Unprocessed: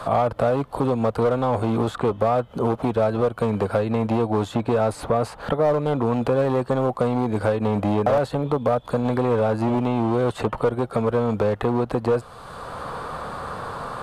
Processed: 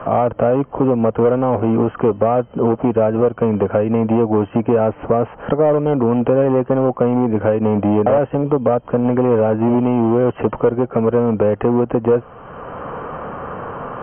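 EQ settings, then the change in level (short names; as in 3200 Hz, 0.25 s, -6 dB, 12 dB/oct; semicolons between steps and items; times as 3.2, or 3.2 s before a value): brick-wall FIR low-pass 3200 Hz; bell 310 Hz +8 dB 2.4 oct; 0.0 dB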